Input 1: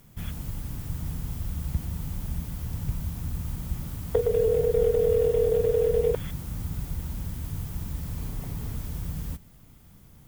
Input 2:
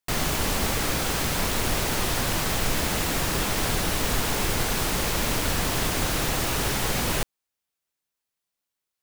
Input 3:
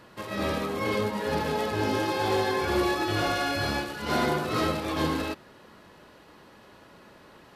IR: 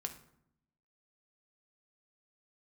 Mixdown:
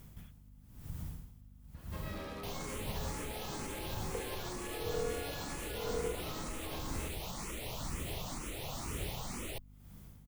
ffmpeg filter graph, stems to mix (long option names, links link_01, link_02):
-filter_complex "[0:a]acompressor=threshold=-42dB:ratio=2,aeval=exprs='val(0)*pow(10,-23*(0.5-0.5*cos(2*PI*1*n/s))/20)':channel_layout=same,volume=-1.5dB[link_01];[1:a]equalizer=frequency=1600:width_type=o:width=0.33:gain=-12,equalizer=frequency=5000:width_type=o:width=0.33:gain=-4,equalizer=frequency=16000:width_type=o:width=0.33:gain=-7,asplit=2[link_02][link_03];[link_03]afreqshift=2.1[link_04];[link_02][link_04]amix=inputs=2:normalize=1,adelay=2350,volume=-11.5dB[link_05];[2:a]acompressor=threshold=-29dB:ratio=2.5,asoftclip=type=tanh:threshold=-29dB,adelay=1750,volume=-9.5dB[link_06];[link_05][link_06]amix=inputs=2:normalize=0,aeval=exprs='val(0)+0.00158*(sin(2*PI*50*n/s)+sin(2*PI*2*50*n/s)/2+sin(2*PI*3*50*n/s)/3+sin(2*PI*4*50*n/s)/4+sin(2*PI*5*50*n/s)/5)':channel_layout=same,alimiter=level_in=7dB:limit=-24dB:level=0:latency=1:release=86,volume=-7dB,volume=0dB[link_07];[link_01][link_07]amix=inputs=2:normalize=0"